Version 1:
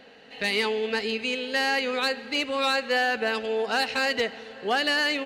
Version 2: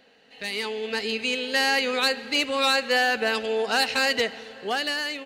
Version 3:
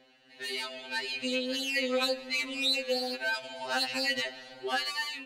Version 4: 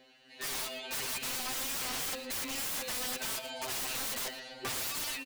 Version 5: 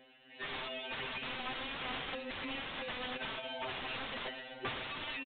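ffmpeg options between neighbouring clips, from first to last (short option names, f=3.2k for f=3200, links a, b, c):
-af "highshelf=f=4.5k:g=7.5,dynaudnorm=f=200:g=9:m=10dB,volume=-8dB"
-af "asubboost=boost=7.5:cutoff=62,alimiter=limit=-16.5dB:level=0:latency=1:release=304,afftfilt=real='re*2.45*eq(mod(b,6),0)':imag='im*2.45*eq(mod(b,6),0)':win_size=2048:overlap=0.75,volume=-1.5dB"
-filter_complex "[0:a]highshelf=f=5.1k:g=6,aeval=exprs='(mod(35.5*val(0)+1,2)-1)/35.5':c=same,asplit=2[a][b];[b]adelay=116.6,volume=-15dB,highshelf=f=4k:g=-2.62[c];[a][c]amix=inputs=2:normalize=0"
-af "aresample=8000,aresample=44100"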